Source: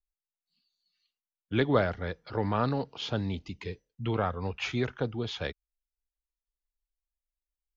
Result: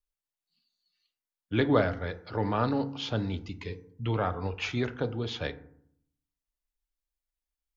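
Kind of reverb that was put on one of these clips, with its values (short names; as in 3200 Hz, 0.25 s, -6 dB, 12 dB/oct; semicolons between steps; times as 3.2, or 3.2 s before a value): FDN reverb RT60 0.65 s, low-frequency decay 1.4×, high-frequency decay 0.4×, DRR 10 dB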